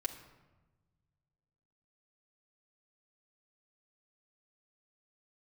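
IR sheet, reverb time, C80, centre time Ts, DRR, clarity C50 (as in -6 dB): 1.2 s, 12.0 dB, 15 ms, 0.5 dB, 10.5 dB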